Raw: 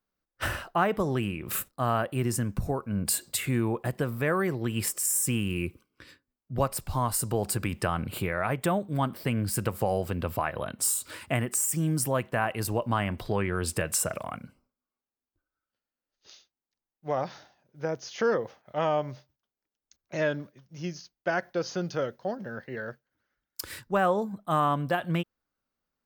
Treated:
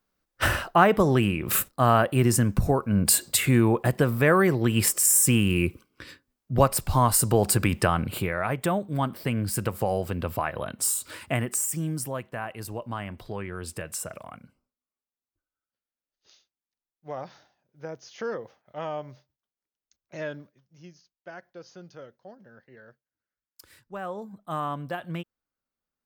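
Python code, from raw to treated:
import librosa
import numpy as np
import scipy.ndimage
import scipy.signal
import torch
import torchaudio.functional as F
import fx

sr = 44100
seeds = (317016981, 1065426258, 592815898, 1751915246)

y = fx.gain(x, sr, db=fx.line((7.73, 7.0), (8.38, 1.0), (11.51, 1.0), (12.26, -6.5), (20.37, -6.5), (20.96, -14.5), (23.73, -14.5), (24.46, -5.5)))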